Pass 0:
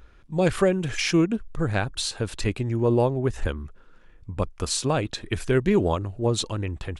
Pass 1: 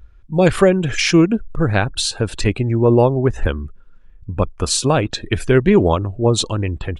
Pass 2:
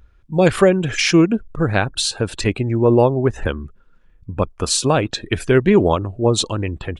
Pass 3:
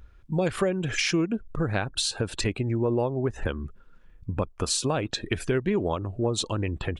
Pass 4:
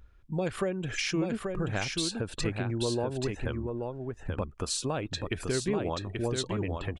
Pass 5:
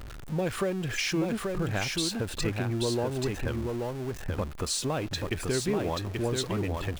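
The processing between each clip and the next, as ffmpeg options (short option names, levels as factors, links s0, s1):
-af "afftdn=nr=15:nf=-45,volume=2.51"
-af "lowshelf=f=71:g=-9"
-af "acompressor=threshold=0.0501:ratio=3"
-af "aecho=1:1:833:0.596,volume=0.531"
-af "aeval=exprs='val(0)+0.5*0.015*sgn(val(0))':c=same"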